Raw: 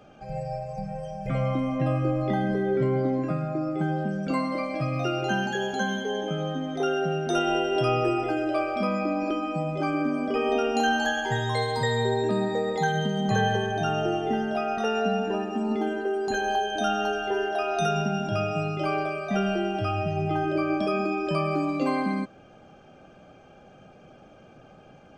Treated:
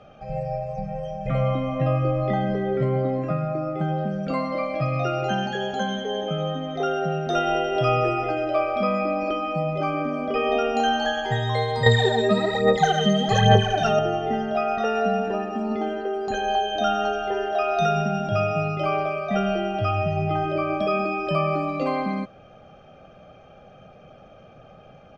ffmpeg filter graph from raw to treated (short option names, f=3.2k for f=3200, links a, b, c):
-filter_complex "[0:a]asettb=1/sr,asplit=3[a][b][c];[a]atrim=end=11.864[d];[b]atrim=start=11.86:end=13.99,asetpts=PTS-STARTPTS,afade=t=in:d=0.004:c=qsin,afade=t=out:st=2.126:d=0.004:c=qsin,highshelf=f=5k:g=11.5,aphaser=in_gain=1:out_gain=1:delay=4.9:decay=0.67:speed=1.2:type=sinusoidal[e];[c]atrim=start=13.986[f];[d][e]acrossfade=d=0.004:c1=hsin:c2=qsin[g];[g][f]acrossfade=d=0.004:c1=qsin:c2=hsin,lowpass=4.4k,aecho=1:1:1.6:0.48,volume=2dB"